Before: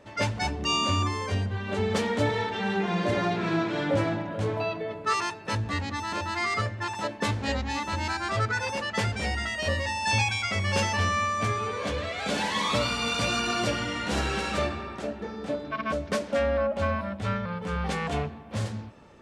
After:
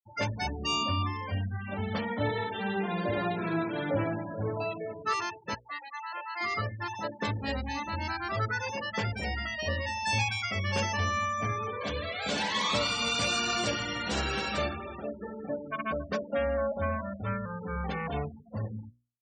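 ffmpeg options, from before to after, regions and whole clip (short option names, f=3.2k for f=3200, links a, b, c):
-filter_complex "[0:a]asettb=1/sr,asplit=3[a][b][c];[a]atrim=end=0.834[d];[b]atrim=start=0.83:end=2.24,asetpts=PTS-STARTPTS,afade=t=in:d=0.004:c=qsin,afade=t=out:st=1.406:d=0.004:c=qsin,lowpass=4.9k,equalizer=f=410:w=6.5:g=-14.5[e];[c]atrim=start=2.236[f];[d][e]acrossfade=d=0.004:c1=hsin:c2=qsin[g];[g][f]acrossfade=d=0.004:c1=qsin:c2=hsin,asettb=1/sr,asplit=3[h][i][j];[h]atrim=end=5.544[k];[i]atrim=start=5.54:end=6.41,asetpts=PTS-STARTPTS,afade=t=in:d=0.004:c=qsin,afade=t=out:st=0.866:d=0.004:c=qsin,highpass=700,highshelf=f=2.2k:g=-4[l];[j]atrim=start=6.406[m];[k][l]acrossfade=d=0.004:c1=hsin:c2=qsin[n];[n][m]acrossfade=d=0.004:c1=qsin:c2=hsin,asettb=1/sr,asplit=3[o][p][q];[o]atrim=end=11.814[r];[p]atrim=start=11.81:end=16.07,asetpts=PTS-STARTPTS,afade=t=in:d=0.004:c=qsin,afade=t=out:st=4.256:d=0.004:c=qsin,highshelf=f=3k:g=6.5,aecho=1:1:276:0.168,atrim=end_sample=187866[s];[q]atrim=start=16.066[t];[r][s]acrossfade=d=0.004:c1=hsin:c2=qsin[u];[u][t]acrossfade=d=0.004:c1=qsin:c2=hsin,afftfilt=real='re*gte(hypot(re,im),0.0282)':imag='im*gte(hypot(re,im),0.0282)':win_size=1024:overlap=0.75,bandreject=f=60:t=h:w=6,bandreject=f=120:t=h:w=6,bandreject=f=180:t=h:w=6,bandreject=f=240:t=h:w=6,bandreject=f=300:t=h:w=6,bandreject=f=360:t=h:w=6,bandreject=f=420:t=h:w=6,bandreject=f=480:t=h:w=6,bandreject=f=540:t=h:w=6,volume=-3.5dB"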